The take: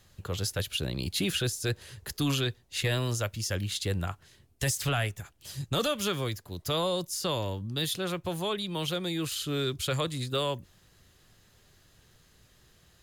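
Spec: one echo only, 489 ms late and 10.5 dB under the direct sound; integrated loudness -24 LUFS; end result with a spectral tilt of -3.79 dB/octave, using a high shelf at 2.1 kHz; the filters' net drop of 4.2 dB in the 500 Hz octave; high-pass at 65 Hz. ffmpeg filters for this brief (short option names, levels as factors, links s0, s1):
-af "highpass=65,equalizer=f=500:t=o:g=-5.5,highshelf=f=2100:g=3.5,aecho=1:1:489:0.299,volume=2"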